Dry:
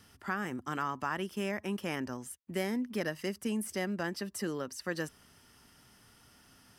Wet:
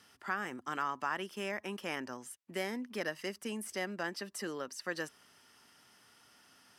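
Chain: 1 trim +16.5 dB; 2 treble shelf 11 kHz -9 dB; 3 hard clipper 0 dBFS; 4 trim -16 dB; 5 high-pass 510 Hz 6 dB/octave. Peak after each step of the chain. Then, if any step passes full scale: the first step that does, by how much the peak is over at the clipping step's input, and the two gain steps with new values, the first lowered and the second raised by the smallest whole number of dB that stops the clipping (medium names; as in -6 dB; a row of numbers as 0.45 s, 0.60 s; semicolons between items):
-3.0 dBFS, -3.0 dBFS, -3.0 dBFS, -19.0 dBFS, -21.0 dBFS; nothing clips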